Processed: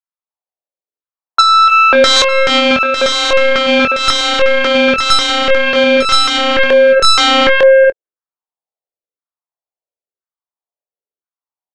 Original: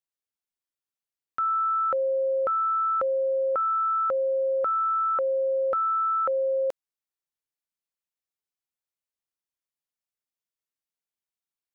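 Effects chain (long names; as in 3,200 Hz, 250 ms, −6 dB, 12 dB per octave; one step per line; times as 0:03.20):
phase distortion by the signal itself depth 0.081 ms
low-pass that shuts in the quiet parts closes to 670 Hz, open at −24 dBFS
parametric band 180 Hz −15 dB 2.3 octaves
on a send: multi-tap delay 237/292 ms −14.5/−3.5 dB
on the sum: auto-filter band-pass saw down 0.98 Hz 370–1,500 Hz
sine wavefolder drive 12 dB, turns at −24 dBFS
double-tracking delay 24 ms −8.5 dB
single-tap delay 902 ms −9 dB
boost into a limiter +30.5 dB
expander for the loud parts 2.5 to 1, over −25 dBFS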